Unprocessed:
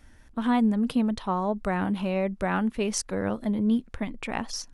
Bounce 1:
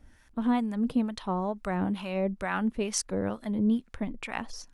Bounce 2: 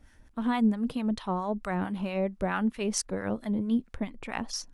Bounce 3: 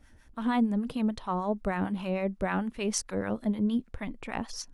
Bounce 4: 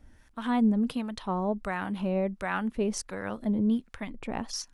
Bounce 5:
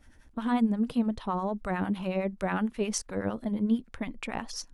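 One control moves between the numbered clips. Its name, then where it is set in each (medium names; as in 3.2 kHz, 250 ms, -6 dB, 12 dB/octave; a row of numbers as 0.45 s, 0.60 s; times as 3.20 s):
harmonic tremolo, rate: 2.2 Hz, 4.5 Hz, 6.6 Hz, 1.4 Hz, 11 Hz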